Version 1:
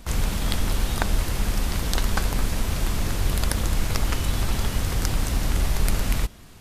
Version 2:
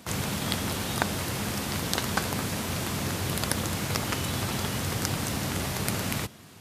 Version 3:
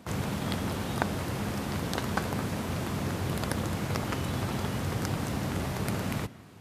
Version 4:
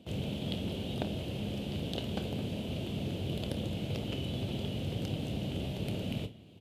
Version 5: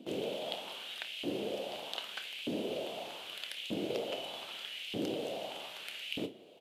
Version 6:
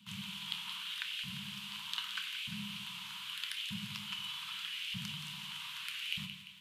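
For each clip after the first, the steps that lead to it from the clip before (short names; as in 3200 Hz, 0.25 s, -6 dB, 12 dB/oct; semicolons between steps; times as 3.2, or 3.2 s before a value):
HPF 99 Hz 24 dB/oct
high shelf 2200 Hz -10.5 dB; on a send at -22 dB: reverb RT60 0.85 s, pre-delay 0.144 s
EQ curve 610 Hz 0 dB, 1100 Hz -18 dB, 1900 Hz -14 dB, 3000 Hz +7 dB, 5400 Hz -10 dB; on a send: early reflections 28 ms -11 dB, 53 ms -16.5 dB; on the sum: gain -4 dB
LFO high-pass saw up 0.81 Hz 270–2700 Hz; gain +1 dB
flange 0.52 Hz, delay 8.2 ms, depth 8.9 ms, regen +72%; Chebyshev band-stop 200–980 Hz, order 5; split-band echo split 1300 Hz, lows 93 ms, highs 0.173 s, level -10 dB; gain +7 dB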